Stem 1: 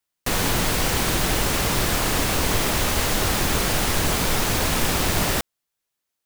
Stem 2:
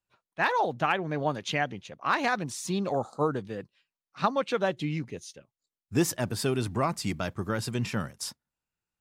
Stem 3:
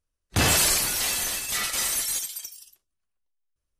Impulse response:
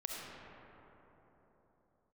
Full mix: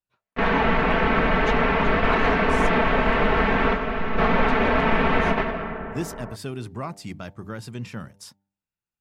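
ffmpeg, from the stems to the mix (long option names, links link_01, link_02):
-filter_complex "[0:a]lowpass=frequency=2300:width=0.5412,lowpass=frequency=2300:width=1.3066,aecho=1:1:4.5:0.92,adelay=100,volume=-0.5dB,asplit=2[link_01][link_02];[link_02]volume=-5dB[link_03];[1:a]bass=frequency=250:gain=7,treble=frequency=4000:gain=-3,bandreject=frequency=98.76:width_type=h:width=4,bandreject=frequency=197.52:width_type=h:width=4,bandreject=frequency=296.28:width_type=h:width=4,bandreject=frequency=395.04:width_type=h:width=4,bandreject=frequency=493.8:width_type=h:width=4,bandreject=frequency=592.56:width_type=h:width=4,bandreject=frequency=691.32:width_type=h:width=4,bandreject=frequency=790.08:width_type=h:width=4,bandreject=frequency=888.84:width_type=h:width=4,volume=-5dB,asplit=2[link_04][link_05];[2:a]lowpass=frequency=2700:width=0.5412,lowpass=frequency=2700:width=1.3066,adelay=1600,volume=-7.5dB[link_06];[link_05]apad=whole_len=280446[link_07];[link_01][link_07]sidechaingate=range=-33dB:threshold=-51dB:ratio=16:detection=peak[link_08];[3:a]atrim=start_sample=2205[link_09];[link_03][link_09]afir=irnorm=-1:irlink=0[link_10];[link_08][link_04][link_06][link_10]amix=inputs=4:normalize=0,lowshelf=frequency=180:gain=-6.5"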